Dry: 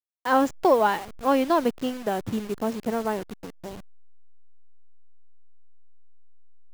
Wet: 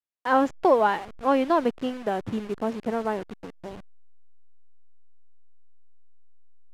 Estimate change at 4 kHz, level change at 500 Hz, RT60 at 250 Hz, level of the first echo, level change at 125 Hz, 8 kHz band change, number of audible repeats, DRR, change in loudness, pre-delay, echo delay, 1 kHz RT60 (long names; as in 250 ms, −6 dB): −3.0 dB, 0.0 dB, no reverb audible, no echo audible, −1.5 dB, can't be measured, no echo audible, no reverb audible, −0.5 dB, no reverb audible, no echo audible, no reverb audible